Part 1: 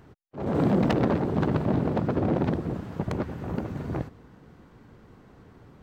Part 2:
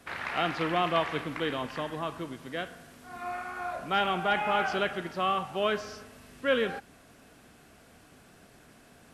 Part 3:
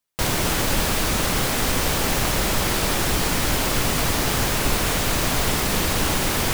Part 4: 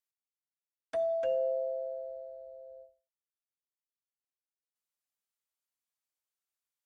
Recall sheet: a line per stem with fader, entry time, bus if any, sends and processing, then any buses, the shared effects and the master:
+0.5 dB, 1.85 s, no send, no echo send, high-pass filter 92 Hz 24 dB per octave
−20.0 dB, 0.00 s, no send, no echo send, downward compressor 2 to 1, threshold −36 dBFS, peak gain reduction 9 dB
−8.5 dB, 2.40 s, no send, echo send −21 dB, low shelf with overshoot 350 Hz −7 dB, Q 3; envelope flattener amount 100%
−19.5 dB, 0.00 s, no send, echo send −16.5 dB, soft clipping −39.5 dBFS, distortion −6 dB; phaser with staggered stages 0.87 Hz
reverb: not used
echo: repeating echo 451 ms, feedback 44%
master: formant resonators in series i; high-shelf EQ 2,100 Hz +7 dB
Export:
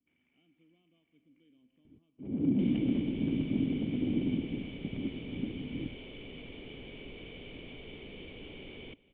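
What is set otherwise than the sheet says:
stem 1: missing high-pass filter 92 Hz 24 dB per octave
stem 4 −19.5 dB → −27.0 dB
master: missing high-shelf EQ 2,100 Hz +7 dB

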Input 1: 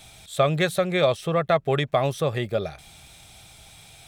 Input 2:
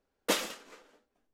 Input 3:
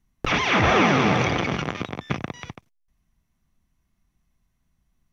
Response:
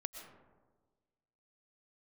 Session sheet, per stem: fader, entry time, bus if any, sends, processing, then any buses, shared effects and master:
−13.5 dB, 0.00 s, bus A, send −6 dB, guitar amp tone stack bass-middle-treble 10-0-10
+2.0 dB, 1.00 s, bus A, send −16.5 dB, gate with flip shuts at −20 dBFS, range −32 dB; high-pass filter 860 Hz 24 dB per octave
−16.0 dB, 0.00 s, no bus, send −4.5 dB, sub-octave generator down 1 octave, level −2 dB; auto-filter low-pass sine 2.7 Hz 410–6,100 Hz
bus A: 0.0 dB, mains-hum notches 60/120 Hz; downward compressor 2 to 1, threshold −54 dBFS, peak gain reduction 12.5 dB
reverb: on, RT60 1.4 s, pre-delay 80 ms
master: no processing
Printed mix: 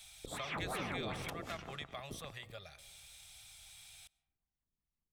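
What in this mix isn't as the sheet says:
stem 1 −13.5 dB → −5.0 dB
stem 3 −16.0 dB → −25.5 dB
reverb return −9.5 dB

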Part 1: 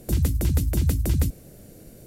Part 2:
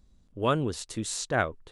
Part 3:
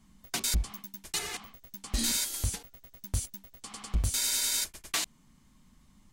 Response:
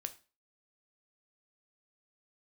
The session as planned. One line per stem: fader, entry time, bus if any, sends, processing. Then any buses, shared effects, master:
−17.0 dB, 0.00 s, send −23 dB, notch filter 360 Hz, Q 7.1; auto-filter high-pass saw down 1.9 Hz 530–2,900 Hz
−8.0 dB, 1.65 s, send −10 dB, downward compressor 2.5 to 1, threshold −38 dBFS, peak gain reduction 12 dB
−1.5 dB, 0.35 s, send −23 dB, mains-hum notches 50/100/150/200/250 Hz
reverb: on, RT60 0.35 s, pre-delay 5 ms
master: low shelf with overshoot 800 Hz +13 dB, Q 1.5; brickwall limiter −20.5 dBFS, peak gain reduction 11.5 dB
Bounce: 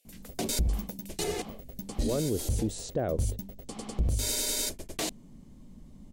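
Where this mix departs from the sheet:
stem 2: missing downward compressor 2.5 to 1, threshold −38 dBFS, peak gain reduction 12 dB
stem 3: entry 0.35 s → 0.05 s
reverb return −10.0 dB

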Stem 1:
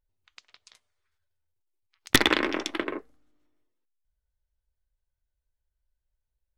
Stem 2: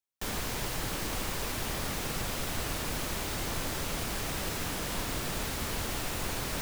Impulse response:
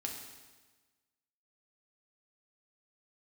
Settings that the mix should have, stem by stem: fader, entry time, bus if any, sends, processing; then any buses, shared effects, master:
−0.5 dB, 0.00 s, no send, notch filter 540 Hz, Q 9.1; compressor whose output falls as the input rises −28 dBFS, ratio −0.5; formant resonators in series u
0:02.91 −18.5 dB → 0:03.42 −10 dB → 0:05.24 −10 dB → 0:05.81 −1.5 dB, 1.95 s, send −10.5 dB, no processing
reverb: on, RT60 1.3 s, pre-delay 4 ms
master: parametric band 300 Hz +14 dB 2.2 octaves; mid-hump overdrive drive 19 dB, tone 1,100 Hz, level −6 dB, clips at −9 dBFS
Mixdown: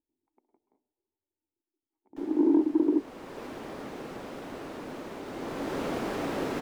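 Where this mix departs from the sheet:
stem 1 −0.5 dB → −7.0 dB
stem 2 −18.5 dB → −28.0 dB

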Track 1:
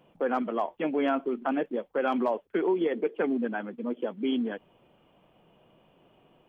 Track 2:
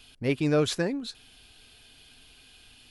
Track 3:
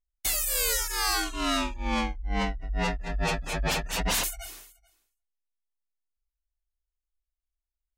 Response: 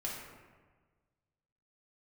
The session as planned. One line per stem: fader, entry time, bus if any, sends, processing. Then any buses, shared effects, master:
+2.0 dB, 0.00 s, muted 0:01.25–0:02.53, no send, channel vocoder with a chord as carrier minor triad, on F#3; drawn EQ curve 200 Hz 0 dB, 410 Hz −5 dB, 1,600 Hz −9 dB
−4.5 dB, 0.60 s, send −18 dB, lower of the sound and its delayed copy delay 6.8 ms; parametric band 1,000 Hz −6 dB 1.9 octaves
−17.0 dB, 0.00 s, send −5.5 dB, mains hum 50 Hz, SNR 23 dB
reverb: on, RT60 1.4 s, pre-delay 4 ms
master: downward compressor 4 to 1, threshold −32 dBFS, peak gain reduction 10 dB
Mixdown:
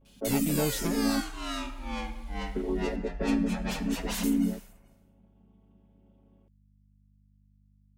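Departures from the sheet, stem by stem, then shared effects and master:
stem 2: entry 0.60 s → 0.05 s
stem 3 −17.0 dB → −11.0 dB
master: missing downward compressor 4 to 1, threshold −32 dBFS, peak gain reduction 10 dB

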